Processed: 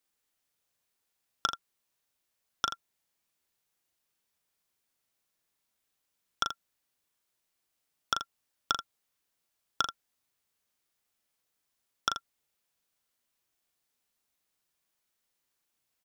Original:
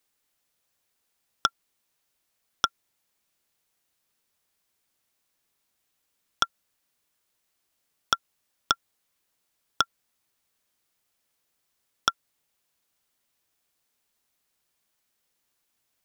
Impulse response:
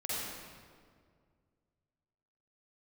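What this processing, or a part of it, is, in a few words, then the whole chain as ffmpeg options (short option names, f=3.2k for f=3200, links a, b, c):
slapback doubling: -filter_complex "[0:a]asplit=3[a][b][c];[b]adelay=38,volume=-6dB[d];[c]adelay=82,volume=-11dB[e];[a][d][e]amix=inputs=3:normalize=0,volume=-6dB"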